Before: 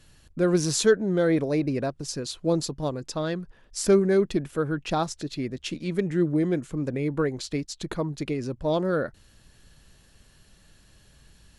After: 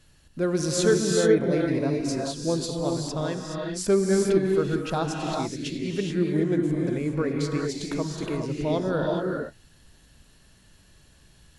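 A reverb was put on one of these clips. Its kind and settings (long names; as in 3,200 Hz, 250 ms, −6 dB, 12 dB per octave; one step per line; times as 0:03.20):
reverb whose tail is shaped and stops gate 450 ms rising, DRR 0 dB
level −2.5 dB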